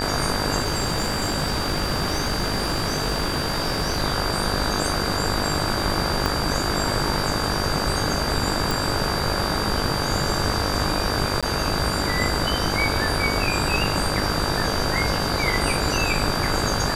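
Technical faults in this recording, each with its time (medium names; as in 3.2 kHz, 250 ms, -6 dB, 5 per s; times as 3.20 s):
buzz 50 Hz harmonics 34 -28 dBFS
whine 4.7 kHz -29 dBFS
0.60–4.04 s: clipped -18 dBFS
6.26 s: pop
8.71 s: pop
11.41–11.43 s: dropout 16 ms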